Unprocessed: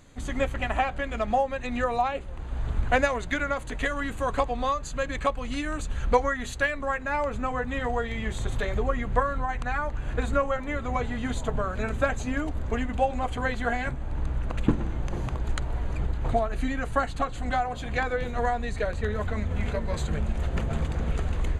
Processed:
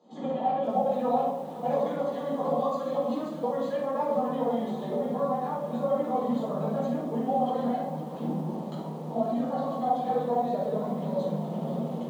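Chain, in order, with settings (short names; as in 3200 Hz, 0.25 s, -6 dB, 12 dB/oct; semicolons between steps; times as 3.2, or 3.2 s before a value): air absorption 190 m; limiter -19.5 dBFS, peak gain reduction 11 dB; granular stretch 0.56×, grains 45 ms; rippled Chebyshev high-pass 150 Hz, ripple 6 dB; band shelf 1900 Hz -16 dB 1.2 oct; shoebox room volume 260 m³, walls mixed, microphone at 4 m; lo-fi delay 0.514 s, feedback 35%, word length 7-bit, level -13.5 dB; gain -5 dB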